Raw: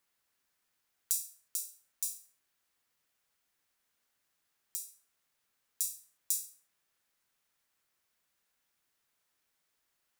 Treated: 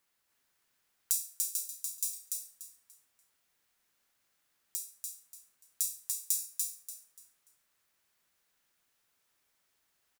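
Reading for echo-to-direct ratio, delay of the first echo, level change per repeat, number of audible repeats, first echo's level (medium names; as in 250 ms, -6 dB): -2.5 dB, 291 ms, -11.5 dB, 3, -3.0 dB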